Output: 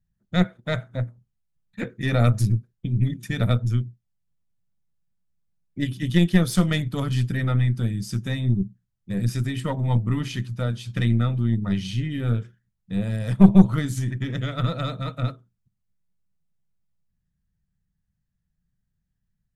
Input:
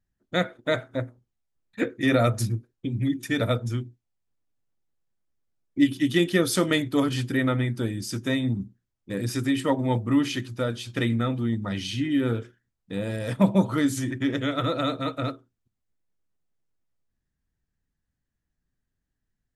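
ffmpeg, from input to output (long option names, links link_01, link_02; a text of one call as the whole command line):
ffmpeg -i in.wav -af "lowshelf=frequency=230:width_type=q:width=3:gain=7.5,aeval=exprs='1.19*(cos(1*acos(clip(val(0)/1.19,-1,1)))-cos(1*PI/2))+0.15*(cos(4*acos(clip(val(0)/1.19,-1,1)))-cos(4*PI/2))+0.0299*(cos(8*acos(clip(val(0)/1.19,-1,1)))-cos(8*PI/2))':channel_layout=same,volume=-3.5dB" out.wav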